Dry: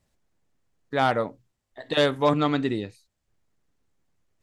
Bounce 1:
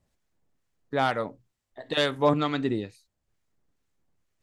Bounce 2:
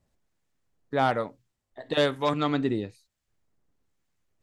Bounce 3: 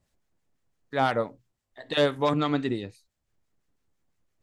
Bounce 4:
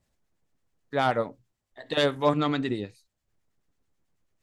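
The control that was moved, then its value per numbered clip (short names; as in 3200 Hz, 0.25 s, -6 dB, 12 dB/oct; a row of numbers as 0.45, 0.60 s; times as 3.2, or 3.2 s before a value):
harmonic tremolo, rate: 2.2, 1.1, 5.9, 9.2 Hz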